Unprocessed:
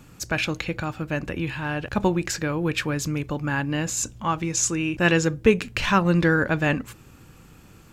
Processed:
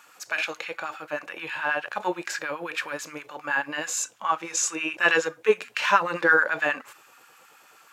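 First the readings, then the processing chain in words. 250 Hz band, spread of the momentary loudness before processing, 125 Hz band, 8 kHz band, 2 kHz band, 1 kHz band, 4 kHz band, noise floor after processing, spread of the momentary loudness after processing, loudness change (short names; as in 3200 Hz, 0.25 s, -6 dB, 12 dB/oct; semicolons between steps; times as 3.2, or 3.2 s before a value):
-13.5 dB, 9 LU, -23.5 dB, -2.5 dB, +2.5 dB, +1.5 dB, -2.0 dB, -55 dBFS, 13 LU, -2.0 dB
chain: LFO high-pass sine 9.4 Hz 520–1600 Hz; harmonic-percussive split percussive -11 dB; gain +3.5 dB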